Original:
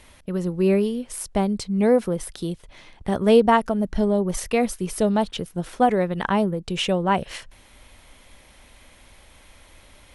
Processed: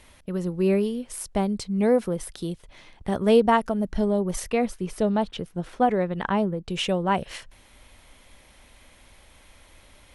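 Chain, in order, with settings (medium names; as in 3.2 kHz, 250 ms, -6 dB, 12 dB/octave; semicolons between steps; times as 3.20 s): 4.51–6.69 s: low-pass 3.5 kHz 6 dB/octave; trim -2.5 dB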